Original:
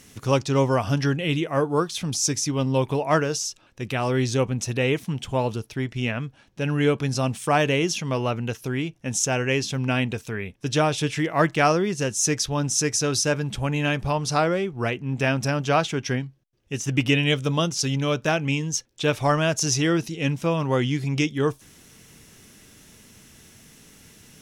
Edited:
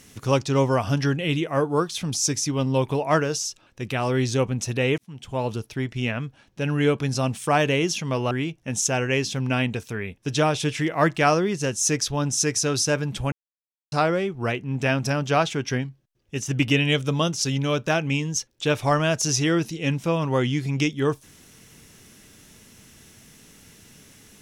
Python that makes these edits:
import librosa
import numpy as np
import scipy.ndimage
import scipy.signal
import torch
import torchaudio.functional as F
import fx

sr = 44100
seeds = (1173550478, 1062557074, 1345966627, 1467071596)

y = fx.edit(x, sr, fx.fade_in_span(start_s=4.98, length_s=0.57),
    fx.cut(start_s=8.31, length_s=0.38),
    fx.silence(start_s=13.7, length_s=0.6), tone=tone)